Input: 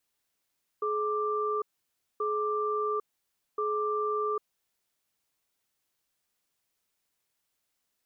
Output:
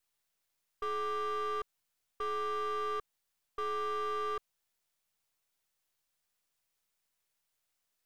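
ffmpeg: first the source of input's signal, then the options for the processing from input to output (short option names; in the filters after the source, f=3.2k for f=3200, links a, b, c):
-f lavfi -i "aevalsrc='0.0335*(sin(2*PI*424*t)+sin(2*PI*1180*t))*clip(min(mod(t,1.38),0.8-mod(t,1.38))/0.005,0,1)':d=3.64:s=44100"
-af "aeval=exprs='if(lt(val(0),0),0.447*val(0),val(0))':c=same,equalizer=f=290:t=o:w=1.2:g=-5,volume=29.5dB,asoftclip=hard,volume=-29.5dB"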